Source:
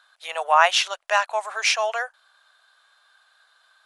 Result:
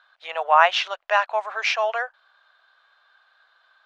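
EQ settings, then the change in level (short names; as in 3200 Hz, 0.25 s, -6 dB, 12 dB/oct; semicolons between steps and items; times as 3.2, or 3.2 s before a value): air absorption 220 m; +2.0 dB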